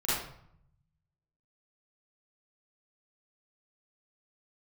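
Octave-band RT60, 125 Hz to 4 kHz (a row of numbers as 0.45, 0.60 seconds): 1.5, 0.95, 0.65, 0.70, 0.55, 0.45 seconds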